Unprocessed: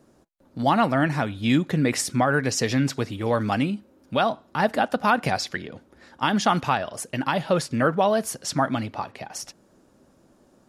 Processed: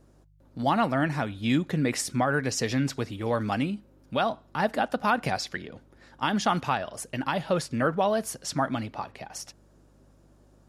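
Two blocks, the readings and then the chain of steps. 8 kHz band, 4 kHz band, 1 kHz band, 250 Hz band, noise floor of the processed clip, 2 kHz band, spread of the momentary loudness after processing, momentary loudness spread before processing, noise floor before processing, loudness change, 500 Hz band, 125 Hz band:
-4.0 dB, -4.0 dB, -4.0 dB, -4.0 dB, -58 dBFS, -4.0 dB, 13 LU, 13 LU, -59 dBFS, -4.0 dB, -4.0 dB, -4.0 dB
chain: mains buzz 50 Hz, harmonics 3, -56 dBFS; trim -4 dB

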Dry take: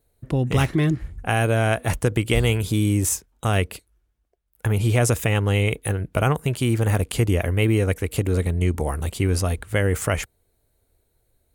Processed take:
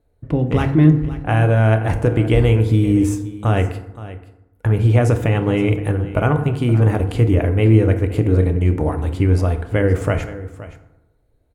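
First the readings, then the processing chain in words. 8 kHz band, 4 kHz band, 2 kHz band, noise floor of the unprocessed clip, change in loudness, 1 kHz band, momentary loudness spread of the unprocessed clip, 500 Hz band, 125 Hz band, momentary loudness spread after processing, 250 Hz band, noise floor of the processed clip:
under -10 dB, -4.5 dB, -0.5 dB, -70 dBFS, +5.0 dB, +2.5 dB, 6 LU, +4.5 dB, +6.0 dB, 9 LU, +7.0 dB, -61 dBFS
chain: low-pass 1.2 kHz 6 dB/octave; delay 521 ms -16 dB; FDN reverb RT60 0.9 s, low-frequency decay 1.2×, high-frequency decay 0.5×, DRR 6.5 dB; trim +4 dB

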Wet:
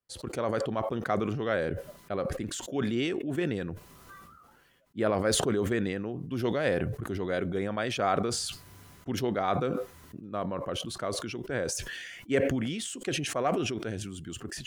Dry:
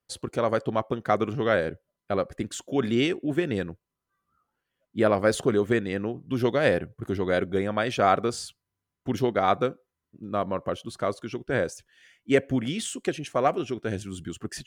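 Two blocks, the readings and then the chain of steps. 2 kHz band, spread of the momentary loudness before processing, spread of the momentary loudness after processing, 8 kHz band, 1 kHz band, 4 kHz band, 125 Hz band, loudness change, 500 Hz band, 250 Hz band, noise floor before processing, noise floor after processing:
-4.5 dB, 11 LU, 12 LU, +3.0 dB, -5.5 dB, +0.5 dB, -2.0 dB, -4.0 dB, -5.0 dB, -3.5 dB, under -85 dBFS, -56 dBFS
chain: decay stretcher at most 29 dB/s; trim -6.5 dB

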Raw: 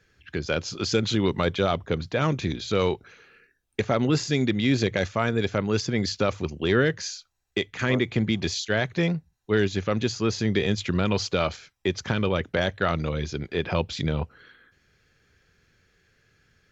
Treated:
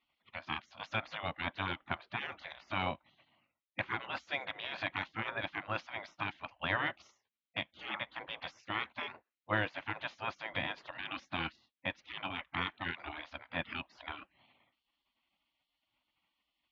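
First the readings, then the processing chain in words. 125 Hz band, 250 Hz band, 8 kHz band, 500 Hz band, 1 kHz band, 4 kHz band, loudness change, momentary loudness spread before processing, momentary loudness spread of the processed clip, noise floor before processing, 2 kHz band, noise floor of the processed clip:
-20.5 dB, -21.0 dB, no reading, -20.0 dB, -7.0 dB, -11.0 dB, -13.0 dB, 8 LU, 9 LU, -72 dBFS, -6.5 dB, under -85 dBFS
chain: vibrato 4.8 Hz 6.4 cents; cabinet simulation 180–2700 Hz, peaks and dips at 180 Hz -10 dB, 290 Hz -10 dB, 430 Hz +7 dB, 680 Hz +5 dB, 990 Hz +8 dB, 2.1 kHz -3 dB; spectral gate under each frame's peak -20 dB weak

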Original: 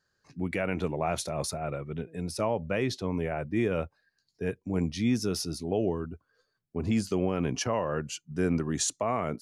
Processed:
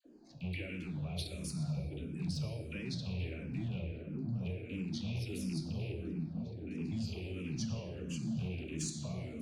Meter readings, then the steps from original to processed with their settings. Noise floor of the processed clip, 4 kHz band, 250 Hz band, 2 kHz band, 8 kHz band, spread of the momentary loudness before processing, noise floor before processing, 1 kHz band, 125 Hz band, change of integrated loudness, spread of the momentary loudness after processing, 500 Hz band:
-48 dBFS, -7.5 dB, -8.5 dB, -10.5 dB, -11.5 dB, 8 LU, -78 dBFS, -23.0 dB, -3.0 dB, -9.0 dB, 4 LU, -17.0 dB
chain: rattle on loud lows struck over -29 dBFS, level -28 dBFS; band noise 230–760 Hz -51 dBFS; repeats whose band climbs or falls 658 ms, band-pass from 160 Hz, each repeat 0.7 oct, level -1 dB; compression 10:1, threshold -31 dBFS, peak gain reduction 11 dB; amplifier tone stack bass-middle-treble 10-0-1; plate-style reverb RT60 1.8 s, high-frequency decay 0.6×, pre-delay 0 ms, DRR 4 dB; Chebyshev shaper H 5 -21 dB, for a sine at -38 dBFS; high-order bell 3.3 kHz +10 dB 1.2 oct; phase dispersion lows, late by 52 ms, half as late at 1.1 kHz; barber-pole phaser -1.5 Hz; trim +13 dB

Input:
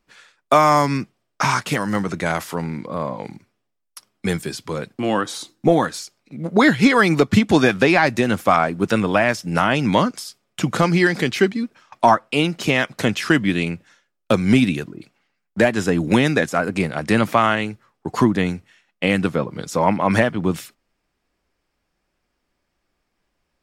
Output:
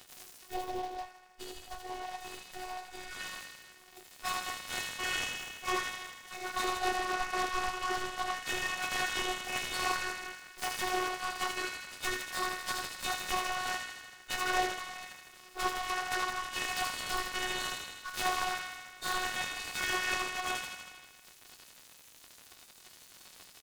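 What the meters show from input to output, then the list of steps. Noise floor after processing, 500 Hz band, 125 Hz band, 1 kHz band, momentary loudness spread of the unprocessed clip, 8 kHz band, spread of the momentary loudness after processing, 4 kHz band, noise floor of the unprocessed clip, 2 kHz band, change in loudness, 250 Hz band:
-57 dBFS, -22.0 dB, -31.0 dB, -13.0 dB, 13 LU, -4.5 dB, 20 LU, -7.5 dB, -75 dBFS, -12.0 dB, -15.5 dB, -27.5 dB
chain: spectral gate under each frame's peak -30 dB weak; low-pass that closes with the level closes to 1.1 kHz, closed at -35 dBFS; wavefolder -36 dBFS; time-frequency box 0.46–3.11 s, 1–12 kHz -15 dB; upward compressor, threshold -49 dBFS; treble shelf 8.8 kHz -5 dB; comb 7.5 ms; on a send: feedback echo behind a high-pass 79 ms, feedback 70%, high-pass 1.7 kHz, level -3 dB; on the sum: two-slope reverb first 0.23 s, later 1.5 s, from -27 dB, DRR -8.5 dB; robot voice 366 Hz; delay time shaken by noise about 3.3 kHz, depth 0.031 ms; trim +4 dB

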